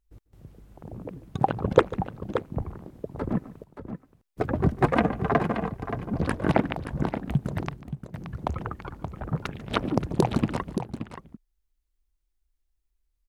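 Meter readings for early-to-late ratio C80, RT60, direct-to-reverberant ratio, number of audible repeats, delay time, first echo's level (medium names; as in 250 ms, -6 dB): no reverb, no reverb, no reverb, 2, 145 ms, -19.0 dB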